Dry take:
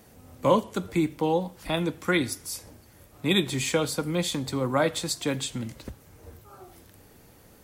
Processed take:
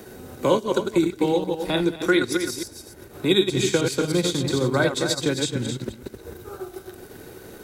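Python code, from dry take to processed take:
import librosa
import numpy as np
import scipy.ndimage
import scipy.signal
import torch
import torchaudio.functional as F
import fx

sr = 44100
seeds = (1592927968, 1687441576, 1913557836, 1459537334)

y = fx.reverse_delay(x, sr, ms=103, wet_db=-4.5)
y = y + 10.0 ** (-9.0 / 20.0) * np.pad(y, (int(260 * sr / 1000.0), 0))[:len(y)]
y = fx.dynamic_eq(y, sr, hz=5700.0, q=1.0, threshold_db=-45.0, ratio=4.0, max_db=7)
y = fx.small_body(y, sr, hz=(380.0, 1500.0, 3800.0), ring_ms=35, db=12)
y = fx.transient(y, sr, attack_db=1, sustain_db=-6)
y = fx.peak_eq(y, sr, hz=120.0, db=8.0, octaves=1.0, at=(3.51, 5.84))
y = fx.band_squash(y, sr, depth_pct=40)
y = F.gain(torch.from_numpy(y), -2.0).numpy()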